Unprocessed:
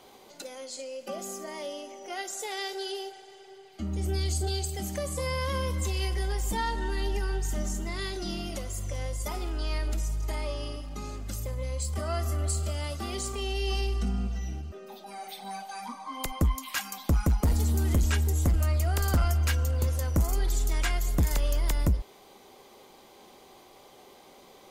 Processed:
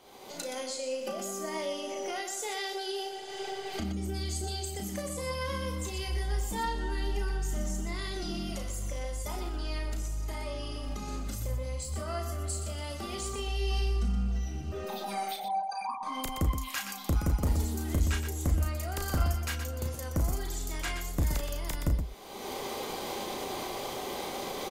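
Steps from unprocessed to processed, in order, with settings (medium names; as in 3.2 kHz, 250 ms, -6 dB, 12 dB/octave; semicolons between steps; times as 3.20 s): 15.36–16.03 s: resonances exaggerated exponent 3; recorder AGC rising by 37 dB/s; loudspeakers at several distances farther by 12 m -6 dB, 42 m -8 dB; trim -4.5 dB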